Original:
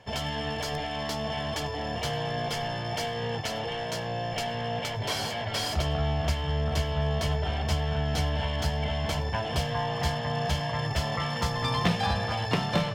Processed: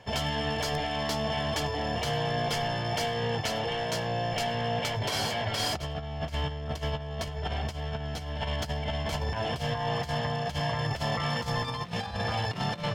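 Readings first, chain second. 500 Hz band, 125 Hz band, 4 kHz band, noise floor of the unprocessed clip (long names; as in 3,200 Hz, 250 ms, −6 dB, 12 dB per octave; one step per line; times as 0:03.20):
−0.5 dB, −2.5 dB, −0.5 dB, −33 dBFS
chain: compressor whose output falls as the input rises −30 dBFS, ratio −0.5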